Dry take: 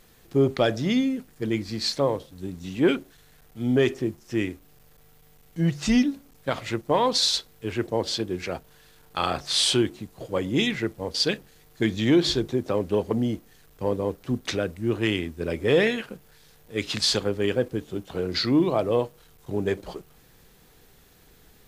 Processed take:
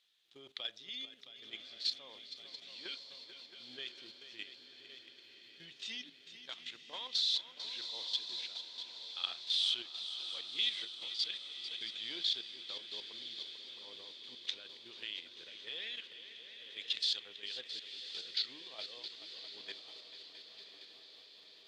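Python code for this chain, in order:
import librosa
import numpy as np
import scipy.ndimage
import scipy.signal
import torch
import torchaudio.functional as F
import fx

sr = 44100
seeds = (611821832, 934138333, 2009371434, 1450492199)

y = fx.bandpass_q(x, sr, hz=3500.0, q=4.3)
y = fx.echo_heads(y, sr, ms=222, heads='second and third', feedback_pct=69, wet_db=-13)
y = fx.level_steps(y, sr, step_db=11)
y = fx.echo_diffused(y, sr, ms=1075, feedback_pct=58, wet_db=-11.0)
y = y * 10.0 ** (1.0 / 20.0)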